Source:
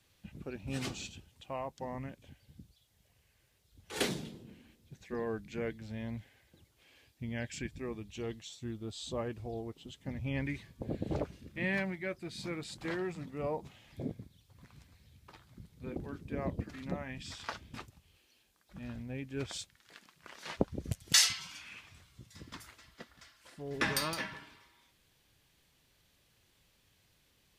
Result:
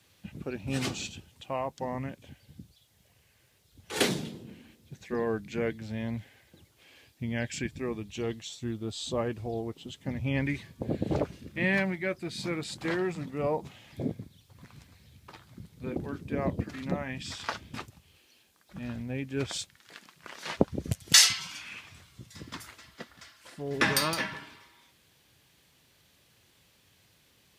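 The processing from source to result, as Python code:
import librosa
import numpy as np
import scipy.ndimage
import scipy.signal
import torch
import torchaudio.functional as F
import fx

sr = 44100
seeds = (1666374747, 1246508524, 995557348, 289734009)

y = scipy.signal.sosfilt(scipy.signal.butter(2, 78.0, 'highpass', fs=sr, output='sos'), x)
y = y * librosa.db_to_amplitude(6.5)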